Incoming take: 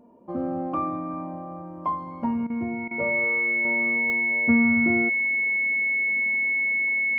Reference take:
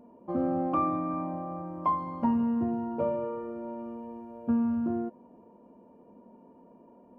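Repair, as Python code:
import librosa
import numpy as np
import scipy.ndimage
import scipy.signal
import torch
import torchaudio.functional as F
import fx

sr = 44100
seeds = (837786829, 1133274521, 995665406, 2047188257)

y = fx.fix_declick_ar(x, sr, threshold=10.0)
y = fx.notch(y, sr, hz=2200.0, q=30.0)
y = fx.fix_interpolate(y, sr, at_s=(2.47, 2.88), length_ms=29.0)
y = fx.fix_level(y, sr, at_s=3.65, step_db=-6.0)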